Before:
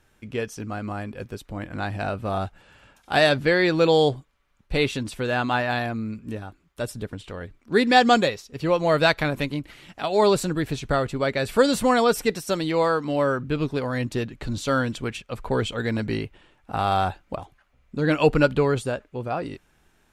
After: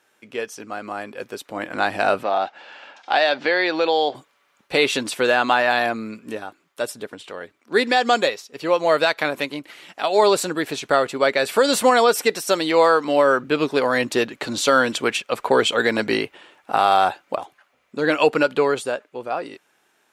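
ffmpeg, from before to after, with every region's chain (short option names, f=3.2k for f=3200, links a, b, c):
-filter_complex "[0:a]asettb=1/sr,asplit=3[a][b][c];[a]atrim=end=2.234[d];[b]atrim=start=2.23:end=4.15,asetpts=PTS-STARTPTS,afade=t=in:d=0.004:c=qsin,afade=t=out:st=1.916:d=0.004:c=qsin,highpass=270,equalizer=f=420:t=q:w=4:g=-5,equalizer=f=790:t=q:w=4:g=4,equalizer=f=1.2k:t=q:w=4:g=-3,lowpass=f=5.4k:w=0.5412,lowpass=f=5.4k:w=1.3066,acompressor=threshold=-32dB:ratio=2:attack=3.2:release=140:knee=1:detection=peak[e];[c]atrim=start=4.146[f];[d][e]acrossfade=d=0.004:c1=hsin:c2=qsin[g];[g][f]acrossfade=d=0.004:c1=qsin:c2=hsin,highpass=390,dynaudnorm=f=190:g=17:m=11.5dB,alimiter=limit=-7.5dB:level=0:latency=1:release=128,volume=2.5dB"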